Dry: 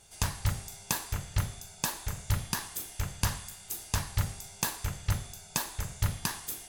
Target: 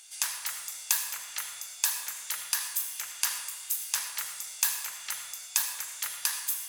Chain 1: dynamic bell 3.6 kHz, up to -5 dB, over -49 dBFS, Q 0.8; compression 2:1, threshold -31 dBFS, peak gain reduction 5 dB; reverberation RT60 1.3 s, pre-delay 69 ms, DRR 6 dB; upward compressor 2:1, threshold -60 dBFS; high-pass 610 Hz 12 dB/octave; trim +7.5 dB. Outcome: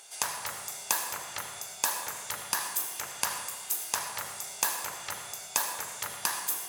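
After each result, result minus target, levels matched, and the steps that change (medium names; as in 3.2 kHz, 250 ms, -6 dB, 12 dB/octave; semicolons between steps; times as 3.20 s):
500 Hz band +17.0 dB; compression: peak gain reduction +5 dB
change: high-pass 2 kHz 12 dB/octave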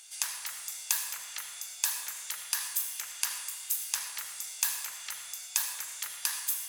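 compression: peak gain reduction +5 dB
remove: compression 2:1, threshold -31 dBFS, peak gain reduction 5 dB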